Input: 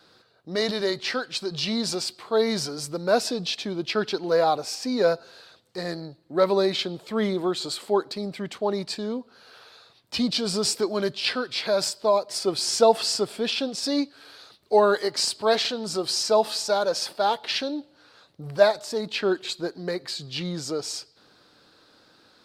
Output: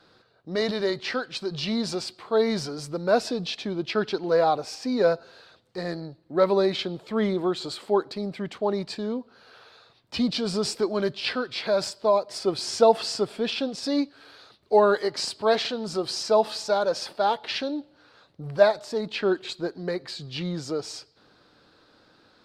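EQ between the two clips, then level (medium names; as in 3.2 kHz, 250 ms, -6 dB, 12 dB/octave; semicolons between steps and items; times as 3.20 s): low-pass 3.3 kHz 6 dB/octave; bass shelf 78 Hz +5.5 dB; 0.0 dB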